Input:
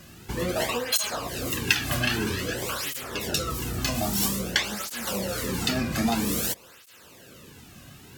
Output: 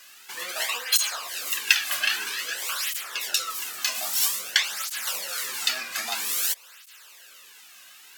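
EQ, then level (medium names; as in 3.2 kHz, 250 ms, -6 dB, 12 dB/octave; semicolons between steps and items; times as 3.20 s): high-pass 1.4 kHz 12 dB/octave; +3.5 dB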